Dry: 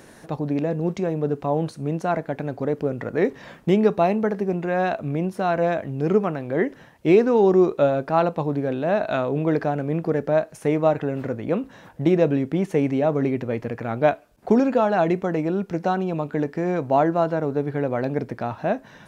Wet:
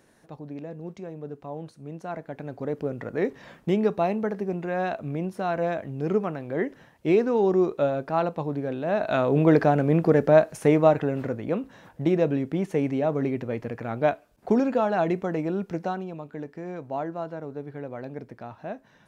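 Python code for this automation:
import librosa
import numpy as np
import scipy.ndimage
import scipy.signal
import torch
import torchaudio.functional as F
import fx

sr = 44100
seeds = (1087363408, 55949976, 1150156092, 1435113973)

y = fx.gain(x, sr, db=fx.line((1.83, -13.5), (2.77, -5.0), (8.85, -5.0), (9.4, 3.5), (10.51, 3.5), (11.58, -4.0), (15.74, -4.0), (16.18, -12.0)))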